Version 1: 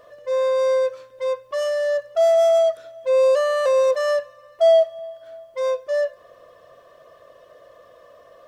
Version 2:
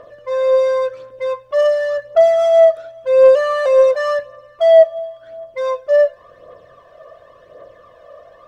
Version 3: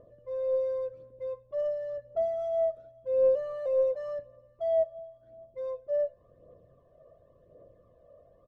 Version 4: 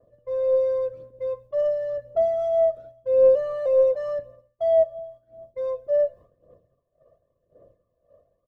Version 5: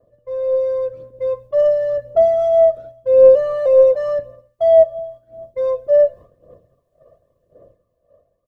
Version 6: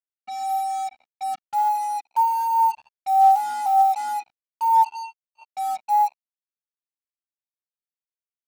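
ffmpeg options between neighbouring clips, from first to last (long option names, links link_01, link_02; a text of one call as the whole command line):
ffmpeg -i in.wav -filter_complex "[0:a]lowpass=frequency=2400:poles=1,aphaser=in_gain=1:out_gain=1:delay=1.8:decay=0.5:speed=0.92:type=triangular,asplit=2[link_01][link_02];[link_02]asoftclip=type=tanh:threshold=-14.5dB,volume=-7dB[link_03];[link_01][link_03]amix=inputs=2:normalize=0,volume=2dB" out.wav
ffmpeg -i in.wav -af "firequalizer=gain_entry='entry(150,0);entry(890,-19);entry(1500,-25)':delay=0.05:min_phase=1,volume=-5dB" out.wav
ffmpeg -i in.wav -af "agate=range=-33dB:threshold=-48dB:ratio=3:detection=peak,volume=7.5dB" out.wav
ffmpeg -i in.wav -af "dynaudnorm=framelen=190:gausssize=11:maxgain=7dB,volume=2dB" out.wav
ffmpeg -i in.wav -af "highpass=frequency=400:width_type=q:width=0.5412,highpass=frequency=400:width_type=q:width=1.307,lowpass=frequency=2900:width_type=q:width=0.5176,lowpass=frequency=2900:width_type=q:width=0.7071,lowpass=frequency=2900:width_type=q:width=1.932,afreqshift=250,highshelf=frequency=2300:gain=-9,acrusher=bits=4:mix=0:aa=0.5,volume=-5.5dB" out.wav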